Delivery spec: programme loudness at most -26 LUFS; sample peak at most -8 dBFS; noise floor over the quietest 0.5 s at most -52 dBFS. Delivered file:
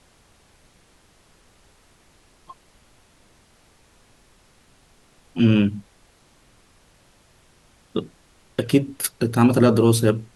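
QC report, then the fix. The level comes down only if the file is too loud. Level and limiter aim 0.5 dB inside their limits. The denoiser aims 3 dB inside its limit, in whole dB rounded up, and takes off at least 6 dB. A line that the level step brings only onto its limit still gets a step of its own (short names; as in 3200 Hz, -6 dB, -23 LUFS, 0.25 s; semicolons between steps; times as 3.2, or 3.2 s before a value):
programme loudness -20.0 LUFS: fail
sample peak -3.5 dBFS: fail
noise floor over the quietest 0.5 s -57 dBFS: OK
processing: gain -6.5 dB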